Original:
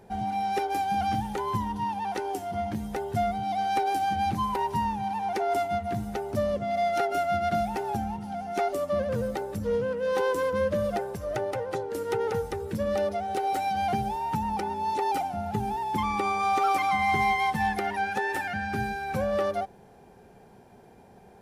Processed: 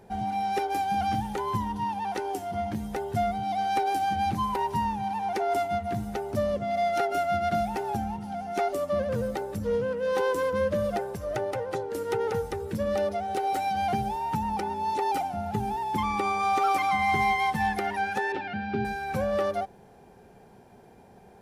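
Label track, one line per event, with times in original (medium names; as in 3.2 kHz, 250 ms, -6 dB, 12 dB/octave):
18.320000	18.850000	cabinet simulation 100–4000 Hz, peaks and dips at 220 Hz +4 dB, 400 Hz +6 dB, 670 Hz -4 dB, 1.1 kHz -6 dB, 1.8 kHz -9 dB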